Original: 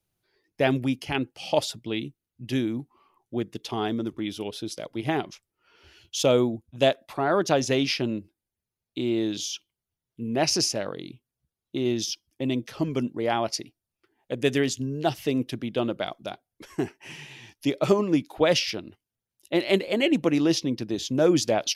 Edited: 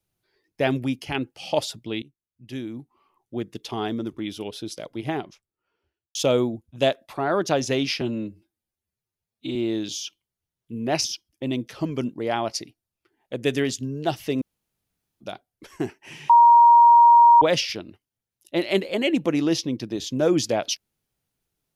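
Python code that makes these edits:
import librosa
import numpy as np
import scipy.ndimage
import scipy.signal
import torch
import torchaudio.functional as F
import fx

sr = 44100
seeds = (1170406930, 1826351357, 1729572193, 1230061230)

y = fx.studio_fade_out(x, sr, start_s=4.81, length_s=1.34)
y = fx.edit(y, sr, fx.fade_in_from(start_s=2.02, length_s=1.54, floor_db=-16.5),
    fx.stretch_span(start_s=8.01, length_s=1.03, factor=1.5),
    fx.cut(start_s=10.53, length_s=1.5),
    fx.room_tone_fill(start_s=15.4, length_s=0.79),
    fx.bleep(start_s=17.28, length_s=1.12, hz=943.0, db=-9.0), tone=tone)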